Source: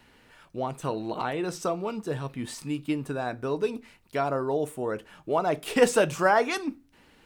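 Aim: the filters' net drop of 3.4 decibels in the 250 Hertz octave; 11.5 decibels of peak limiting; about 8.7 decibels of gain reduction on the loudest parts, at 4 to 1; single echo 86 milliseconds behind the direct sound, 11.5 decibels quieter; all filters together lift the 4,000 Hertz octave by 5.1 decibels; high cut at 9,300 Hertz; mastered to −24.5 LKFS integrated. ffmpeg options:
ffmpeg -i in.wav -af "lowpass=9300,equalizer=frequency=250:width_type=o:gain=-4.5,equalizer=frequency=4000:width_type=o:gain=7,acompressor=threshold=-25dB:ratio=4,alimiter=level_in=3dB:limit=-24dB:level=0:latency=1,volume=-3dB,aecho=1:1:86:0.266,volume=12dB" out.wav

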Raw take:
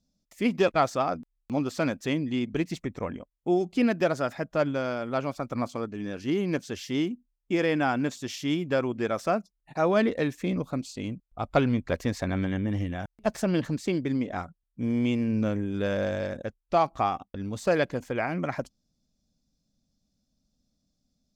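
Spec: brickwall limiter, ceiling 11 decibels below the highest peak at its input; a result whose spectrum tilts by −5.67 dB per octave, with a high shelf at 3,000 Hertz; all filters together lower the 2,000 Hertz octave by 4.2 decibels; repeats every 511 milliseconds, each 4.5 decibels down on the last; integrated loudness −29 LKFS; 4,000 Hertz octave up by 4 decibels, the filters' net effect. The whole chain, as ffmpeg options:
ffmpeg -i in.wav -af "equalizer=frequency=2000:width_type=o:gain=-8.5,highshelf=frequency=3000:gain=3,equalizer=frequency=4000:width_type=o:gain=6,alimiter=limit=-21.5dB:level=0:latency=1,aecho=1:1:511|1022|1533|2044|2555|3066|3577|4088|4599:0.596|0.357|0.214|0.129|0.0772|0.0463|0.0278|0.0167|0.01,volume=1.5dB" out.wav

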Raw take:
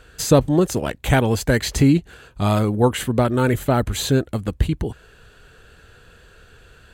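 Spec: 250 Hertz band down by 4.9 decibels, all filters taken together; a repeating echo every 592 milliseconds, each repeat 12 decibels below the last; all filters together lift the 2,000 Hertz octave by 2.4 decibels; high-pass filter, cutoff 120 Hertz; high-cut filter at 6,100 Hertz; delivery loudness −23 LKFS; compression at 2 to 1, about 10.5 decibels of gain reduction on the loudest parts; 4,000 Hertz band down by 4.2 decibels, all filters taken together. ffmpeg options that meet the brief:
ffmpeg -i in.wav -af "highpass=120,lowpass=6100,equalizer=frequency=250:width_type=o:gain=-6,equalizer=frequency=2000:width_type=o:gain=4.5,equalizer=frequency=4000:width_type=o:gain=-6,acompressor=threshold=-30dB:ratio=2,aecho=1:1:592|1184|1776:0.251|0.0628|0.0157,volume=7dB" out.wav

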